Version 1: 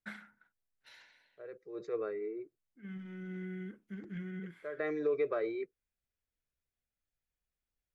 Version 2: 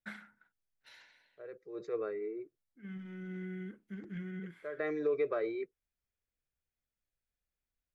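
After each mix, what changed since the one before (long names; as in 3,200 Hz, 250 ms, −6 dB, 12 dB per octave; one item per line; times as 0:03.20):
nothing changed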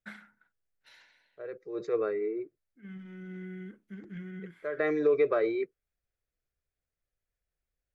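second voice +7.0 dB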